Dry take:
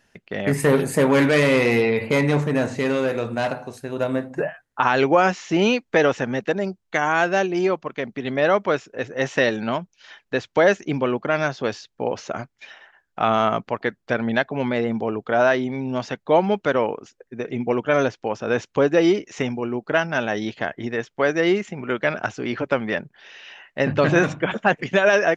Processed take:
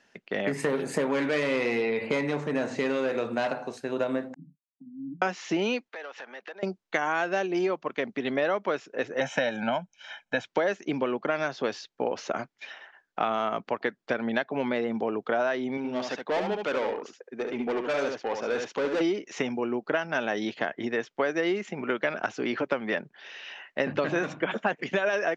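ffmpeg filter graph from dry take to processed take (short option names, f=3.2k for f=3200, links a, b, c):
-filter_complex "[0:a]asettb=1/sr,asplit=3[a][b][c];[a]atrim=end=4.344[d];[b]atrim=start=4.34:end=5.22,asetpts=PTS-STARTPTS,afade=t=in:d=0.004:c=qsin,afade=t=out:st=0.876:d=0.004:c=qsin,acompressor=threshold=-40dB:ratio=1.5:attack=3.2:release=140:knee=1:detection=peak,asuperpass=centerf=200:order=20:qfactor=1.3,agate=range=-33dB:threshold=-51dB:ratio=3:release=100:detection=peak[e];[c]atrim=start=5.216[f];[d][e]acrossfade=d=0.004:c1=hsin:c2=qsin[g];[g][f]acrossfade=d=0.004:c1=qsin:c2=hsin,asettb=1/sr,asplit=3[h][i][j];[h]atrim=end=5.884[k];[i]atrim=start=5.88:end=6.63,asetpts=PTS-STARTPTS,afade=t=in:d=0.004:c=qsin,afade=t=out:st=0.746:d=0.004:c=qsin,acompressor=threshold=-30dB:ratio=12:attack=3.2:release=140:knee=1:detection=peak,volume=27dB,asoftclip=hard,volume=-27dB,highpass=710,lowpass=4.4k[l];[j]atrim=start=6.626[m];[k][l]acrossfade=d=0.004:c1=hsin:c2=qsin[n];[n][m]acrossfade=d=0.004:c1=qsin:c2=hsin,asettb=1/sr,asplit=3[o][p][q];[o]atrim=end=9.204[r];[p]atrim=start=9.2:end=10.45,asetpts=PTS-STARTPTS,afade=t=in:d=0.004:c=qsin,afade=t=out:st=1.246:d=0.004:c=qsin,equalizer=f=4.5k:w=5.4:g=-14.5,aecho=1:1:1.3:0.89,atrim=end_sample=55125[s];[q]atrim=start=10.446[t];[r][s]acrossfade=d=0.004:c1=hsin:c2=qsin[u];[u][t]acrossfade=d=0.004:c1=qsin:c2=hsin,asettb=1/sr,asplit=3[v][w][x];[v]atrim=end=15.774[y];[w]atrim=start=15.77:end=19.01,asetpts=PTS-STARTPTS,afade=t=in:d=0.004:c=qsin,afade=t=out:st=3.236:d=0.004:c=qsin,highpass=f=230:p=1,aeval=exprs='(tanh(14.1*val(0)+0.15)-tanh(0.15))/14.1':c=same,aecho=1:1:71:0.531,atrim=end_sample=142884[z];[x]atrim=start=19.006[aa];[y][z]acrossfade=d=0.004:c1=hsin:c2=qsin[ab];[ab][aa]acrossfade=d=0.004:c1=qsin:c2=hsin,acompressor=threshold=-23dB:ratio=6,acrossover=split=180 7800:gain=0.141 1 0.0891[ac][ad][ae];[ac][ad][ae]amix=inputs=3:normalize=0"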